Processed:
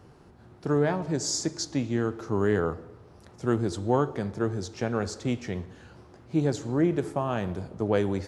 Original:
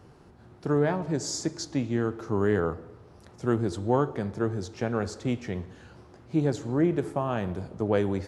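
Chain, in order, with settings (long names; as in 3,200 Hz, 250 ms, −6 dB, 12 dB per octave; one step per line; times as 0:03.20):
dynamic equaliser 6,000 Hz, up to +4 dB, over −53 dBFS, Q 0.73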